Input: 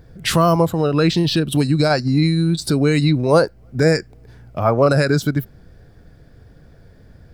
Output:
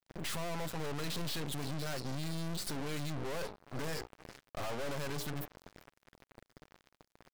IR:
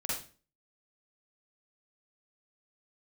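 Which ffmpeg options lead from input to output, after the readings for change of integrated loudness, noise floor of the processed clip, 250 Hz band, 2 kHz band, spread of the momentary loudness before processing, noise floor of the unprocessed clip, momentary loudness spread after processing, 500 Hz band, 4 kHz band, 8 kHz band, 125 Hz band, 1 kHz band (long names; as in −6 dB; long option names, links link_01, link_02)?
−22.5 dB, below −85 dBFS, −24.5 dB, −18.5 dB, 6 LU, −47 dBFS, 8 LU, −24.0 dB, −17.0 dB, −13.0 dB, −23.0 dB, −21.0 dB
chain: -filter_complex "[0:a]highpass=frequency=200:poles=1,bandreject=frequency=60:width_type=h:width=6,bandreject=frequency=120:width_type=h:width=6,bandreject=frequency=180:width_type=h:width=6,bandreject=frequency=240:width_type=h:width=6,bandreject=frequency=300:width_type=h:width=6,bandreject=frequency=360:width_type=h:width=6,bandreject=frequency=420:width_type=h:width=6,bandreject=frequency=480:width_type=h:width=6,aecho=1:1:7.3:0.41,adynamicequalizer=threshold=0.0251:dfrequency=270:dqfactor=2.5:tfrequency=270:tqfactor=2.5:attack=5:release=100:ratio=0.375:range=3.5:mode=cutabove:tftype=bell,asplit=2[link_01][link_02];[link_02]alimiter=limit=-11dB:level=0:latency=1,volume=-1dB[link_03];[link_01][link_03]amix=inputs=2:normalize=0,acompressor=threshold=-29dB:ratio=2,asplit=4[link_04][link_05][link_06][link_07];[link_05]adelay=390,afreqshift=37,volume=-23.5dB[link_08];[link_06]adelay=780,afreqshift=74,volume=-29.7dB[link_09];[link_07]adelay=1170,afreqshift=111,volume=-35.9dB[link_10];[link_04][link_08][link_09][link_10]amix=inputs=4:normalize=0,aeval=exprs='(tanh(89.1*val(0)+0.6)-tanh(0.6))/89.1':channel_layout=same,acrusher=bits=5:mix=0:aa=0.5,volume=2dB"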